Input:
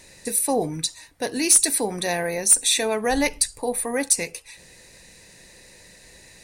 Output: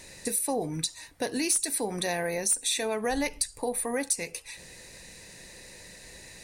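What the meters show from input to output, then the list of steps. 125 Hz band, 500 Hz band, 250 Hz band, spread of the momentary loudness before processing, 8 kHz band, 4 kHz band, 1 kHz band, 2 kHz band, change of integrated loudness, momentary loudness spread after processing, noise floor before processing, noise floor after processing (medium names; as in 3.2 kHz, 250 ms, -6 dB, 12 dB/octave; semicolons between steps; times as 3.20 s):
-4.0 dB, -5.5 dB, -5.5 dB, 13 LU, -8.5 dB, -7.0 dB, -6.0 dB, -6.0 dB, -8.0 dB, 20 LU, -50 dBFS, -50 dBFS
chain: compression 2.5:1, threshold -30 dBFS, peak gain reduction 13 dB; trim +1 dB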